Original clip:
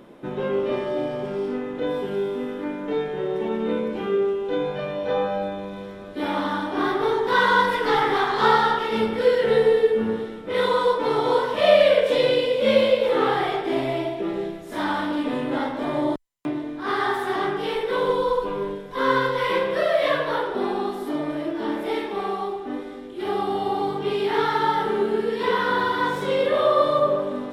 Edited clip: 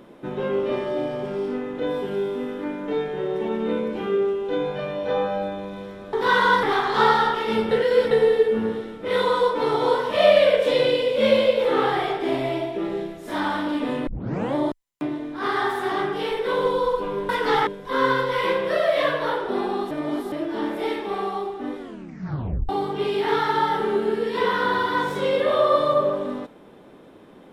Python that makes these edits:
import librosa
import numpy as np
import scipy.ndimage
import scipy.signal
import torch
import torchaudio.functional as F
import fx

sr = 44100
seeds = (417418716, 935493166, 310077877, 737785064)

y = fx.edit(x, sr, fx.cut(start_s=6.13, length_s=1.06),
    fx.move(start_s=7.69, length_s=0.38, to_s=18.73),
    fx.reverse_span(start_s=9.15, length_s=0.4),
    fx.tape_start(start_s=15.51, length_s=0.48),
    fx.reverse_span(start_s=20.97, length_s=0.41),
    fx.tape_stop(start_s=22.85, length_s=0.9), tone=tone)